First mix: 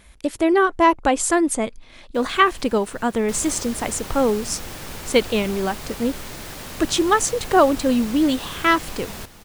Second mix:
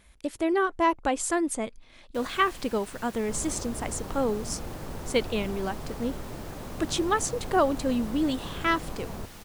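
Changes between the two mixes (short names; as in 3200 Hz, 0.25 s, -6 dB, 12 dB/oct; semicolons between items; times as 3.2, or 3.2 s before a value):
speech -8.0 dB; second sound: add Gaussian blur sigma 6.8 samples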